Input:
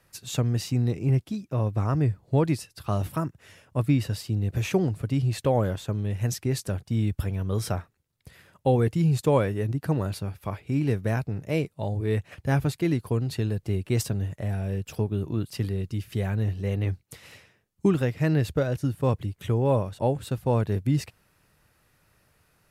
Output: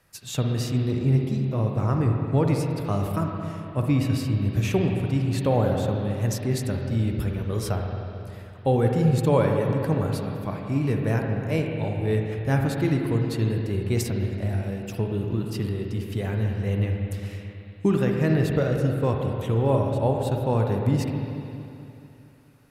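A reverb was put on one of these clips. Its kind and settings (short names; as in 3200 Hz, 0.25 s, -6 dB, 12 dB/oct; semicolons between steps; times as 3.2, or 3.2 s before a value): spring tank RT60 2.9 s, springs 44/55/60 ms, chirp 30 ms, DRR 1.5 dB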